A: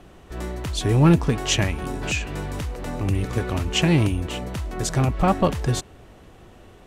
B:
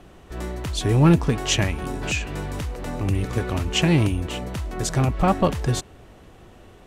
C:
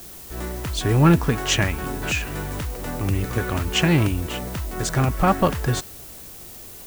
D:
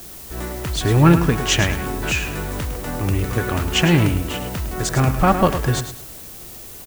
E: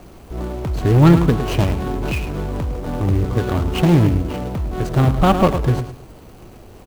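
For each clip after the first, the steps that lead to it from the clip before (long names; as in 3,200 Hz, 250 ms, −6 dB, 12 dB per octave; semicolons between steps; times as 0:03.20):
no processing that can be heard
dynamic equaliser 1,500 Hz, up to +6 dB, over −42 dBFS, Q 1.6; background noise blue −41 dBFS
repeating echo 106 ms, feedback 27%, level −10 dB; level +2.5 dB
running median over 25 samples; in parallel at −3.5 dB: soft clipping −10.5 dBFS, distortion −15 dB; on the sum: level −1 dB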